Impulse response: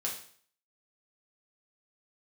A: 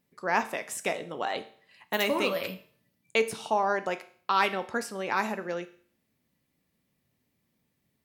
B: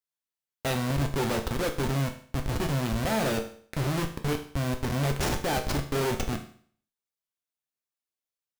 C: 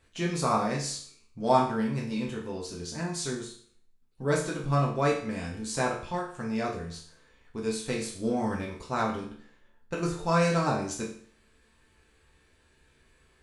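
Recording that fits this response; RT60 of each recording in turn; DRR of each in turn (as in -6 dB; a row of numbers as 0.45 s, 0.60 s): C; 0.50 s, 0.50 s, 0.50 s; 9.5 dB, 4.0 dB, -3.5 dB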